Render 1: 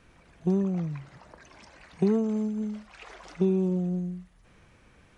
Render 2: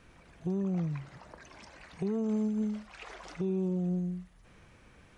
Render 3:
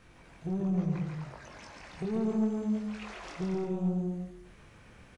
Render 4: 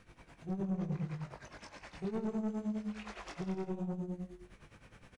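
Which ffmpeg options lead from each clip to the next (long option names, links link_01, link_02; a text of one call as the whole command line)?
ffmpeg -i in.wav -af "alimiter=level_in=0.5dB:limit=-24dB:level=0:latency=1:release=231,volume=-0.5dB" out.wav
ffmpeg -i in.wav -filter_complex "[0:a]flanger=delay=19.5:depth=7.9:speed=0.72,asoftclip=type=tanh:threshold=-30.5dB,asplit=2[link_01][link_02];[link_02]aecho=0:1:140|231|290.2|328.6|353.6:0.631|0.398|0.251|0.158|0.1[link_03];[link_01][link_03]amix=inputs=2:normalize=0,volume=4dB" out.wav
ffmpeg -i in.wav -filter_complex "[0:a]tremolo=f=9.7:d=0.79,asoftclip=type=tanh:threshold=-30dB,asplit=2[link_01][link_02];[link_02]adelay=20,volume=-12dB[link_03];[link_01][link_03]amix=inputs=2:normalize=0" out.wav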